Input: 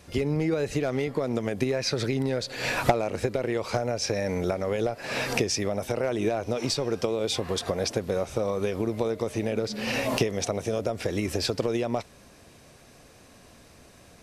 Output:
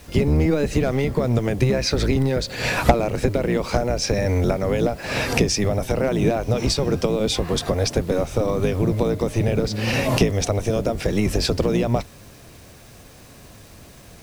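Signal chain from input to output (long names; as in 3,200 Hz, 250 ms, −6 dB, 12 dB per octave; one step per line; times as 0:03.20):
sub-octave generator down 1 octave, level +3 dB
bit reduction 9 bits
level +5 dB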